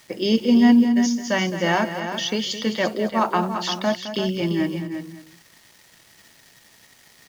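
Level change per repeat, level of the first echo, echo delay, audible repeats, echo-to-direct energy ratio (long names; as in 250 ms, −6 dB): repeats not evenly spaced, −11.5 dB, 213 ms, 3, −7.0 dB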